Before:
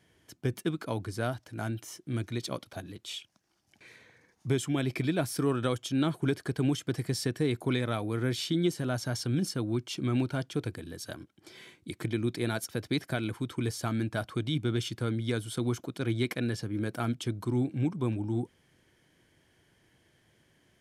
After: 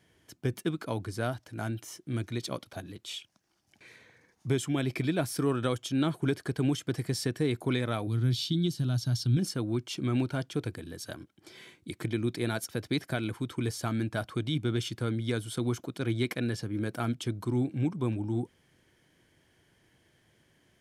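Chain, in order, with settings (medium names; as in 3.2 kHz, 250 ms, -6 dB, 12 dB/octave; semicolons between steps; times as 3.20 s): 8.07–9.37 s: graphic EQ 125/500/1000/2000/4000/8000 Hz +7/-12/-5/-11/+7/-5 dB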